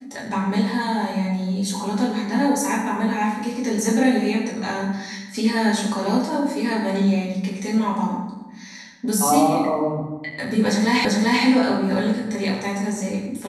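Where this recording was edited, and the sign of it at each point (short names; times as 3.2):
11.05 repeat of the last 0.39 s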